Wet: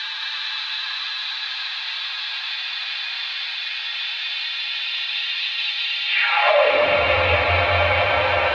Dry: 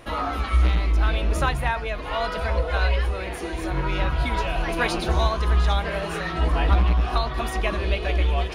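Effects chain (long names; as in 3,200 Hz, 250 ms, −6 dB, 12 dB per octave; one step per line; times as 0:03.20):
compressor on every frequency bin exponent 0.4
camcorder AGC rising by 7 dB per second
reverb reduction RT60 1.9 s
three-way crossover with the lows and the highs turned down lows −21 dB, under 440 Hz, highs −14 dB, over 4,500 Hz
extreme stretch with random phases 33×, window 0.25 s, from 0:07.74
high-pass filter sweep 3,800 Hz → 62 Hz, 0:06.05–0:07.04
phase-vocoder pitch shift with formants kept +6 semitones
high-frequency loss of the air 120 metres
on a send: delay that swaps between a low-pass and a high-pass 111 ms, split 1,300 Hz, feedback 76%, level −2.5 dB
on the sum: level +7.5 dB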